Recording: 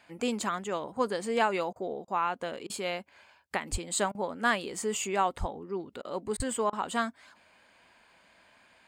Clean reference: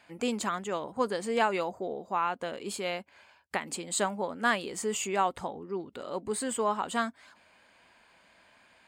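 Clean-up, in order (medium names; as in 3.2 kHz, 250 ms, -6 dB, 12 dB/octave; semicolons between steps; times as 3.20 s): 3.71–3.83 s: high-pass 140 Hz 24 dB/octave; 5.39–5.51 s: high-pass 140 Hz 24 dB/octave; 6.36–6.48 s: high-pass 140 Hz 24 dB/octave; interpolate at 1.73/2.05/2.67/4.12/6.02/6.37/6.70 s, 27 ms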